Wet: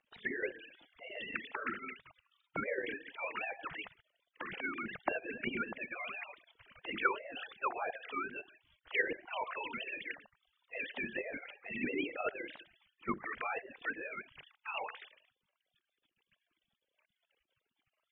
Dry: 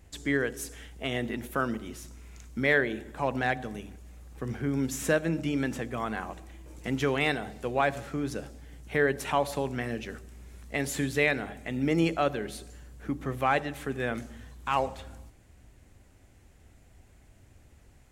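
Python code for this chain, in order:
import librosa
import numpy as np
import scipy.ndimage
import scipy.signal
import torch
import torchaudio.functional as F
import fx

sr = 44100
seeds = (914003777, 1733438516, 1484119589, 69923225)

y = fx.sine_speech(x, sr)
y = fx.spec_gate(y, sr, threshold_db=-20, keep='weak')
y = fx.env_lowpass_down(y, sr, base_hz=1300.0, full_db=-48.0)
y = y * librosa.db_to_amplitude(16.0)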